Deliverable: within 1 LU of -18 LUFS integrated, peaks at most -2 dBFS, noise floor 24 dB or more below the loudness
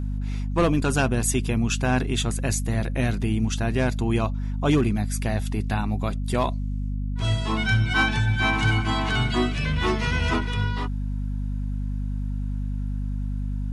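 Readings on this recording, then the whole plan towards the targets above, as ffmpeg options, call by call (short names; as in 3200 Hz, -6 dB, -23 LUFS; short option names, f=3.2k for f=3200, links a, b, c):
hum 50 Hz; harmonics up to 250 Hz; hum level -25 dBFS; loudness -25.0 LUFS; peak -10.5 dBFS; loudness target -18.0 LUFS
-> -af "bandreject=f=50:t=h:w=6,bandreject=f=100:t=h:w=6,bandreject=f=150:t=h:w=6,bandreject=f=200:t=h:w=6,bandreject=f=250:t=h:w=6"
-af "volume=7dB"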